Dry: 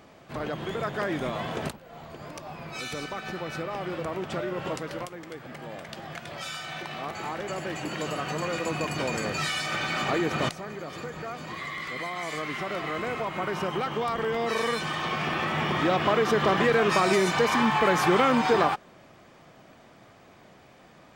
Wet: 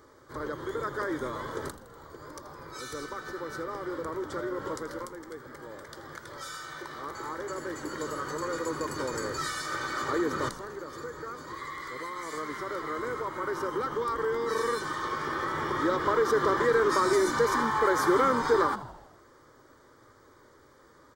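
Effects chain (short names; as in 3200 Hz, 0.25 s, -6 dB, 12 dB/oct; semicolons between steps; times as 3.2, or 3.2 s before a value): fixed phaser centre 710 Hz, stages 6; frequency-shifting echo 81 ms, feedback 60%, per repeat -83 Hz, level -15 dB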